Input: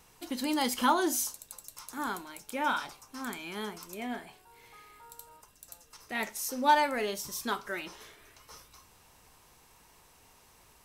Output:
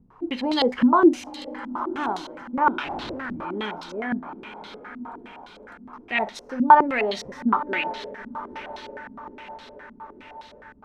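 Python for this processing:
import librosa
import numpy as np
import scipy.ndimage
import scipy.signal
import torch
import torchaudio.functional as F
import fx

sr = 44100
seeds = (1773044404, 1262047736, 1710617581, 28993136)

y = fx.echo_diffused(x, sr, ms=952, feedback_pct=55, wet_db=-13.0)
y = fx.schmitt(y, sr, flips_db=-44.5, at=(2.84, 3.45))
y = fx.filter_held_lowpass(y, sr, hz=9.7, low_hz=230.0, high_hz=3900.0)
y = F.gain(torch.from_numpy(y), 5.0).numpy()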